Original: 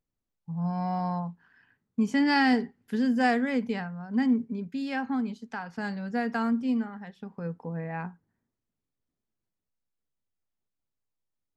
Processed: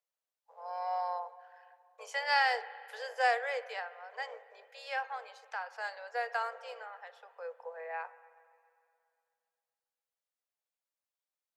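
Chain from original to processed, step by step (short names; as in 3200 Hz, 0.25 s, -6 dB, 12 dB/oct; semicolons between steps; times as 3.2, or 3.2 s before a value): octaver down 2 oct, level -2 dB; steep high-pass 480 Hz 96 dB/oct; on a send: reverb RT60 2.4 s, pre-delay 57 ms, DRR 15.5 dB; on the sum: gain -2 dB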